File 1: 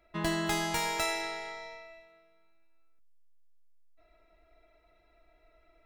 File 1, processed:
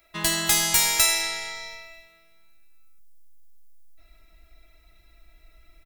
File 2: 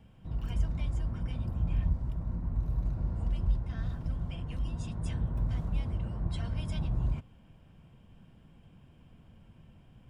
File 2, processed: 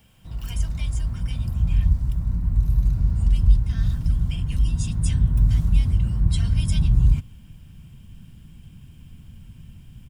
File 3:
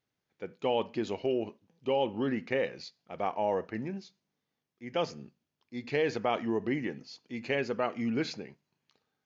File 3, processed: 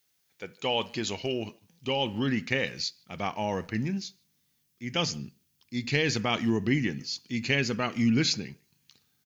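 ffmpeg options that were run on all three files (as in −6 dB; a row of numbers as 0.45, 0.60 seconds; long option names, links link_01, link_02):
-filter_complex "[0:a]asplit=2[link_01][link_02];[link_02]adelay=150,highpass=300,lowpass=3400,asoftclip=type=hard:threshold=-23.5dB,volume=-26dB[link_03];[link_01][link_03]amix=inputs=2:normalize=0,asubboost=boost=7:cutoff=210,crystalizer=i=9.5:c=0,volume=-2dB"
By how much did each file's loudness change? +11.5, +11.5, +3.5 LU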